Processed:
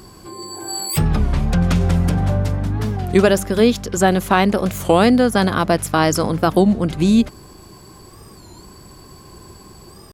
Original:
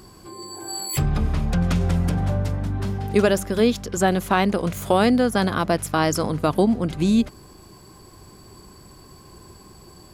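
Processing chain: record warp 33 1/3 rpm, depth 160 cents; gain +4.5 dB

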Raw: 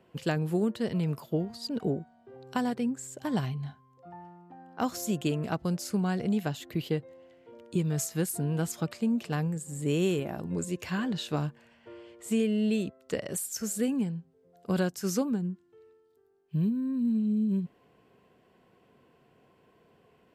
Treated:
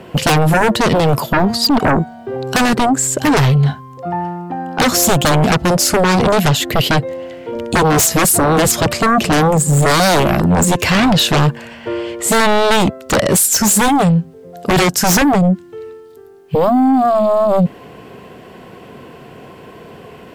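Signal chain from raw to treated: 7.55–10 low shelf 140 Hz +10.5 dB; sine folder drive 17 dB, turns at -14 dBFS; gain +5.5 dB

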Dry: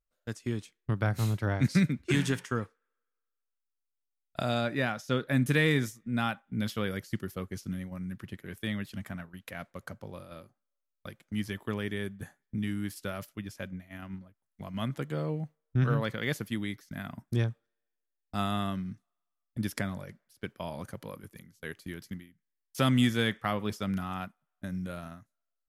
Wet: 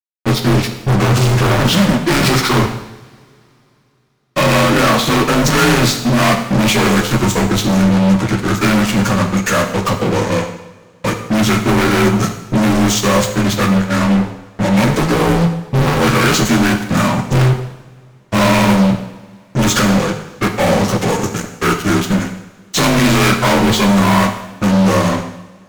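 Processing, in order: inharmonic rescaling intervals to 86%; fuzz box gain 49 dB, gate -53 dBFS; two-slope reverb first 0.86 s, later 3.2 s, from -22 dB, DRR 4 dB; gain +1.5 dB

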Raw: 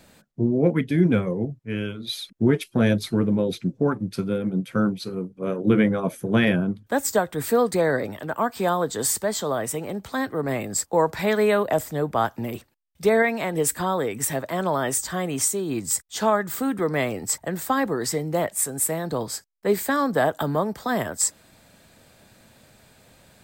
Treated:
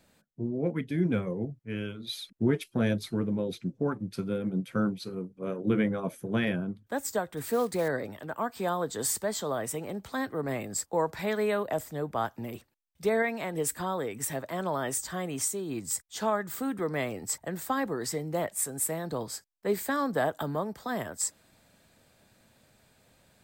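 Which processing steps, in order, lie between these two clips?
7.37–7.9 block floating point 5-bit; vocal rider 2 s; gain -8 dB

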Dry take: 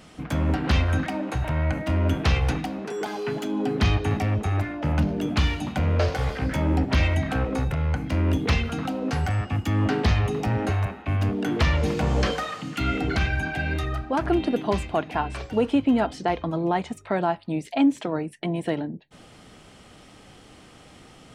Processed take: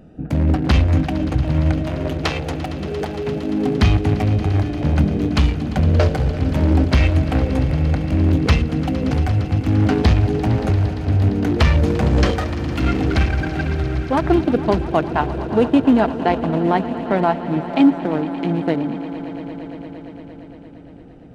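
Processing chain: Wiener smoothing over 41 samples; 1.82–2.8 HPF 290 Hz 24 dB/oct; swelling echo 0.115 s, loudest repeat 5, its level -17 dB; gain +7 dB

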